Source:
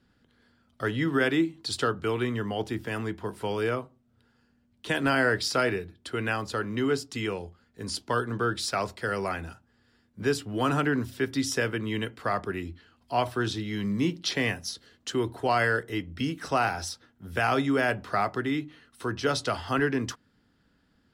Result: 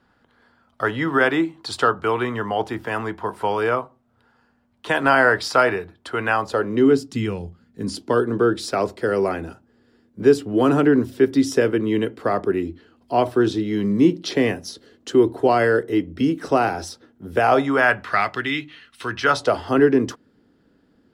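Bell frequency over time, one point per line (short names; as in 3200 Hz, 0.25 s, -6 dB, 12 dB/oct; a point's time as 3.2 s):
bell +13.5 dB 2 oct
6.36 s 930 Hz
7.36 s 120 Hz
8.18 s 370 Hz
17.3 s 370 Hz
18.25 s 2700 Hz
19.11 s 2700 Hz
19.58 s 380 Hz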